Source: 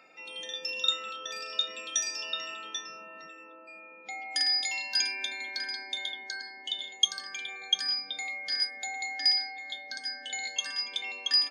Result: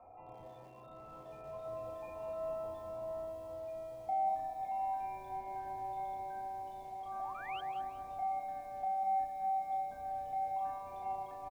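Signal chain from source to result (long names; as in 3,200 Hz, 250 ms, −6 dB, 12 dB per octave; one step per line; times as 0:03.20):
sub-octave generator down 2 octaves, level −2 dB
spectral tilt −5 dB per octave
in parallel at +2 dB: compressor whose output falls as the input rises −41 dBFS, ratio −0.5
on the sum: formant resonators in series a
double-tracking delay 34 ms −4 dB
sound drawn into the spectrogram rise, 0:07.19–0:07.61, 660–3,300 Hz −53 dBFS
on a send: feedback echo with a band-pass in the loop 203 ms, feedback 68%, band-pass 570 Hz, level −5 dB
on the sum: feedback echo at a low word length 184 ms, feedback 35%, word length 10 bits, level −13 dB
level +5 dB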